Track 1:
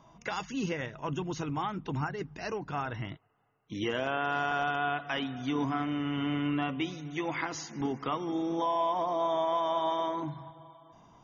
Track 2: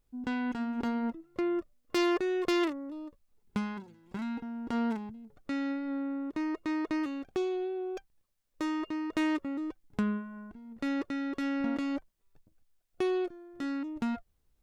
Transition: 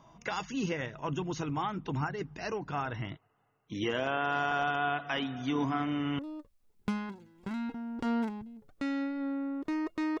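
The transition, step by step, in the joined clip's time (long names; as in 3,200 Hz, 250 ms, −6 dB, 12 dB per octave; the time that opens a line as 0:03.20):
track 1
0:06.19: continue with track 2 from 0:02.87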